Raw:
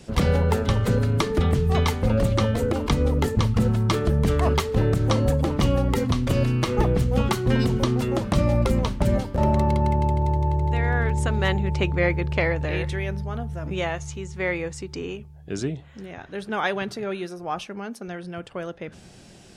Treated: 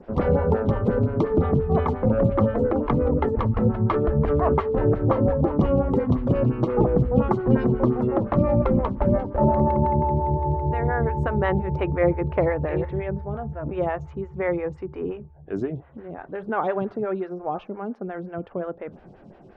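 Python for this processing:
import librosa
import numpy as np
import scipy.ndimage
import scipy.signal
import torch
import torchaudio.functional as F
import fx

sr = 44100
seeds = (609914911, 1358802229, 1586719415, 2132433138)

y = scipy.signal.sosfilt(scipy.signal.butter(2, 1300.0, 'lowpass', fs=sr, output='sos'), x)
y = fx.stagger_phaser(y, sr, hz=5.7)
y = F.gain(torch.from_numpy(y), 5.0).numpy()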